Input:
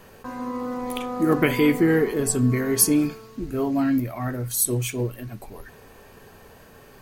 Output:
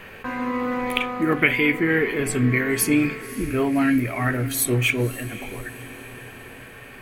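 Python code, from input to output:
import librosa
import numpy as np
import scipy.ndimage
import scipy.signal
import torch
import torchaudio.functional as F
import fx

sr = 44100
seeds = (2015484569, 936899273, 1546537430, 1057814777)

p1 = fx.curve_eq(x, sr, hz=(1000.0, 2300.0, 5400.0), db=(0, 13, -9))
p2 = fx.rider(p1, sr, range_db=4, speed_s=0.5)
p3 = fx.high_shelf(p2, sr, hz=6200.0, db=5.5)
y = p3 + fx.echo_diffused(p3, sr, ms=549, feedback_pct=56, wet_db=-15.5, dry=0)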